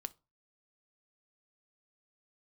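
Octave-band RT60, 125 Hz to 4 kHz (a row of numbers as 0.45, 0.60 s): 0.40, 0.30, 0.30, 0.30, 0.20, 0.20 s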